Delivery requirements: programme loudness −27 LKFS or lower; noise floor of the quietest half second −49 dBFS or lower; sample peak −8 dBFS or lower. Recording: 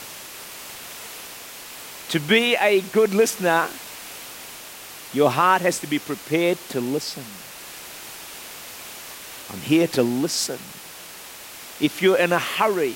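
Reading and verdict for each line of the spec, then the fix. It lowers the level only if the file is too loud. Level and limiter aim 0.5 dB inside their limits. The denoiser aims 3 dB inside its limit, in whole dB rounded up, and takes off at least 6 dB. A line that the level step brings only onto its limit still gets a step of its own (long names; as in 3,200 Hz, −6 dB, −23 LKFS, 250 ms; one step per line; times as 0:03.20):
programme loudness −21.0 LKFS: out of spec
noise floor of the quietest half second −40 dBFS: out of spec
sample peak −5.5 dBFS: out of spec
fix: broadband denoise 6 dB, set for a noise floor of −40 dBFS
level −6.5 dB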